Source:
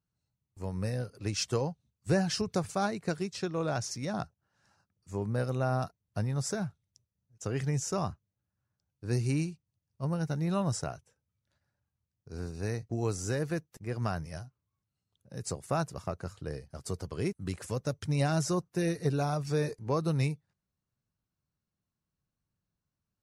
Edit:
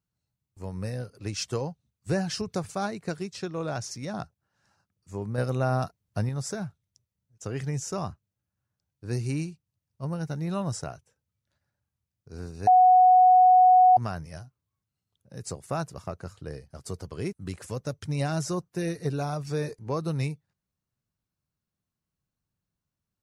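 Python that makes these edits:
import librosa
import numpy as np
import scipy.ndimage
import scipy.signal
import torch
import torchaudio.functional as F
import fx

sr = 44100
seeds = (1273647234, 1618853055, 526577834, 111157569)

y = fx.edit(x, sr, fx.clip_gain(start_s=5.38, length_s=0.91, db=4.0),
    fx.bleep(start_s=12.67, length_s=1.3, hz=737.0, db=-13.0), tone=tone)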